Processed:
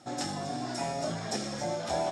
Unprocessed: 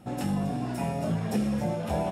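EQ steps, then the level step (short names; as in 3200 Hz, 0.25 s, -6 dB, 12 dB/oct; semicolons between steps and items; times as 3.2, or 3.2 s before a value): tone controls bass -10 dB, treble +12 dB; speaker cabinet 100–6700 Hz, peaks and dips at 200 Hz -10 dB, 470 Hz -9 dB, 980 Hz -4 dB, 2700 Hz -9 dB; +2.5 dB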